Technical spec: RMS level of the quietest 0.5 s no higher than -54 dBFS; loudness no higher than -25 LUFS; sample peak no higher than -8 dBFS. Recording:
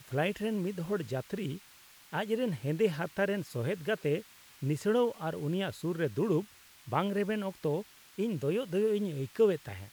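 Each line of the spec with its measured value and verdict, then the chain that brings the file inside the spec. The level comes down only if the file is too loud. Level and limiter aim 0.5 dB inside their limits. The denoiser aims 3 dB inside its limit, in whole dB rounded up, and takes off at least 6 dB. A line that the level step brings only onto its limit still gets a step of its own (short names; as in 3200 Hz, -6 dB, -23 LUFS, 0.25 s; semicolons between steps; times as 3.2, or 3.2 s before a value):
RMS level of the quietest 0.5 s -57 dBFS: OK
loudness -32.5 LUFS: OK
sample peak -15.0 dBFS: OK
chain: none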